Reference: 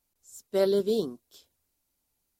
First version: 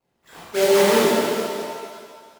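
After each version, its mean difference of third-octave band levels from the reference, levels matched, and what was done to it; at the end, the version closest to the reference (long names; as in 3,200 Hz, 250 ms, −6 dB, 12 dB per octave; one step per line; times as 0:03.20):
13.0 dB: sample-and-hold swept by an LFO 22×, swing 160% 2.7 Hz
high-pass filter 130 Hz 6 dB per octave
on a send: single-tap delay 444 ms −15 dB
on the sum: reverb with rising layers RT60 1.8 s, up +7 semitones, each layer −8 dB, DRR −9.5 dB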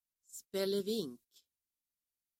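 3.5 dB: low-shelf EQ 140 Hz −9.5 dB
noise gate −51 dBFS, range −14 dB
parametric band 700 Hz −13.5 dB 1.9 octaves
level −1.5 dB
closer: second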